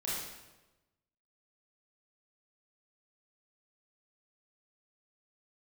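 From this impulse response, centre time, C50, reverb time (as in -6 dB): 82 ms, -1.5 dB, 1.1 s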